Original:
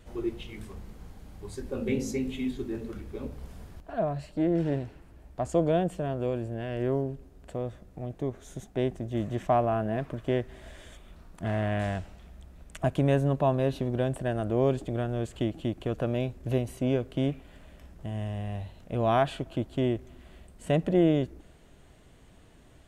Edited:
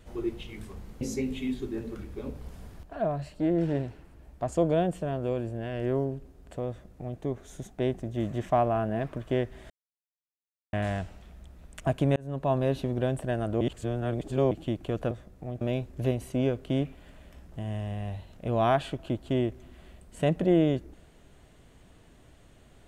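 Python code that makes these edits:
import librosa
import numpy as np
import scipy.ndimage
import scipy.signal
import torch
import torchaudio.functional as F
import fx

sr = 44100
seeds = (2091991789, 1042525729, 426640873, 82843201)

y = fx.edit(x, sr, fx.cut(start_s=1.01, length_s=0.97),
    fx.duplicate(start_s=7.66, length_s=0.5, to_s=16.08),
    fx.silence(start_s=10.67, length_s=1.03),
    fx.fade_in_span(start_s=13.13, length_s=0.41),
    fx.reverse_span(start_s=14.58, length_s=0.9), tone=tone)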